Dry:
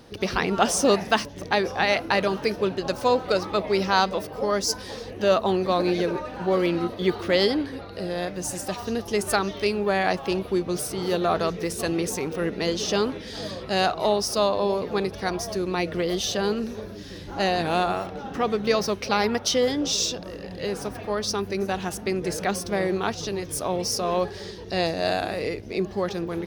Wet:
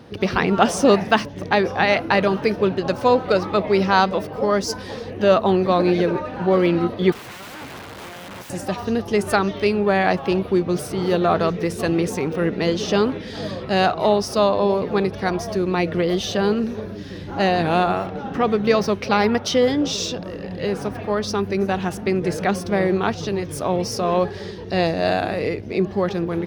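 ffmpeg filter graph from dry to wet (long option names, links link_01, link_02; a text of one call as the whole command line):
ffmpeg -i in.wav -filter_complex "[0:a]asettb=1/sr,asplit=3[link_01][link_02][link_03];[link_01]atrim=end=7.124[link_04];[link_02]atrim=start=7.12:end=8.5,asetpts=PTS-STARTPTS,afade=type=in:duration=0.004:curve=qsin,afade=type=out:start_time=1.376:duration=0.004:curve=qsin,highshelf=frequency=7000:gain=9.5,acompressor=threshold=-33dB:ratio=4:attack=3.2:release=140:knee=1:detection=peak,aeval=exprs='(mod(53.1*val(0)+1,2)-1)/53.1':channel_layout=same[link_05];[link_03]atrim=start=8.496[link_06];[link_04][link_05]acrossfade=duration=0.004:curve1=hsin:curve2=qsin[link_07];[link_07][link_06]acrossfade=duration=0.004:curve1=qsin:curve2=hsin,highpass=79,bass=frequency=250:gain=4,treble=frequency=4000:gain=-9,volume=4.5dB" out.wav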